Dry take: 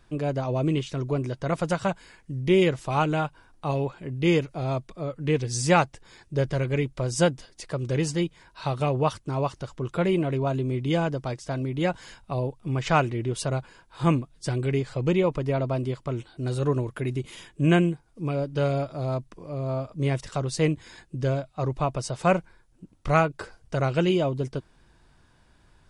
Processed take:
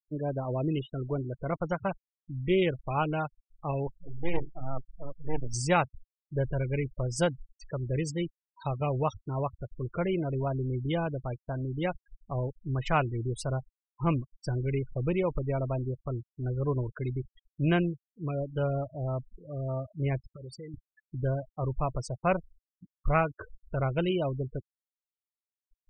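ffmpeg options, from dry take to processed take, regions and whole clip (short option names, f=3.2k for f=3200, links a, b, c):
-filter_complex "[0:a]asettb=1/sr,asplit=3[a][b][c];[a]atrim=end=3.874[d];[b]atrim=start=3.87:end=5.54,asetpts=PTS-STARTPTS,afade=t=in:d=0.004:c=qsin,afade=t=out:st=1.666:d=0.004:c=qsin,bandreject=f=50:t=h:w=6,bandreject=f=100:t=h:w=6,bandreject=f=150:t=h:w=6,bandreject=f=200:t=h:w=6,bandreject=f=250:t=h:w=6,bandreject=f=300:t=h:w=6,bandreject=f=350:t=h:w=6,bandreject=f=400:t=h:w=6,aeval=exprs='max(val(0),0)':c=same[e];[c]atrim=start=5.536[f];[d][e]acrossfade=d=0.004:c1=hsin:c2=qsin[g];[g][f]acrossfade=d=0.004:c1=qsin:c2=hsin,asettb=1/sr,asplit=3[h][i][j];[h]atrim=end=20.204[k];[i]atrim=start=20.2:end=20.74,asetpts=PTS-STARTPTS,afade=t=in:d=0.004:c=qsin,afade=t=out:st=0.536:d=0.004:c=qsin,lowshelf=f=150:g=-9.5,acompressor=threshold=-33dB:ratio=8:attack=3.2:release=140:knee=1:detection=peak,asuperstop=centerf=780:order=12:qfactor=1.7[l];[j]atrim=start=20.736[m];[k][l]acrossfade=d=0.004:c1=hsin:c2=qsin[n];[n][m]acrossfade=d=0.004:c1=qsin:c2=hsin,afftfilt=real='re*gte(hypot(re,im),0.0355)':imag='im*gte(hypot(re,im),0.0355)':win_size=1024:overlap=0.75,asubboost=boost=3.5:cutoff=92,volume=-4.5dB"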